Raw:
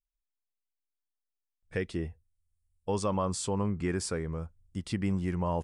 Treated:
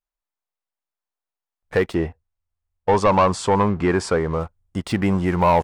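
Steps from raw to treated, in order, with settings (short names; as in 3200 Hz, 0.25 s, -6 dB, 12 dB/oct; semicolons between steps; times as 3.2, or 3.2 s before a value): bell 870 Hz +13.5 dB 2.4 oct; sample leveller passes 2; 1.94–4.4 air absorption 56 m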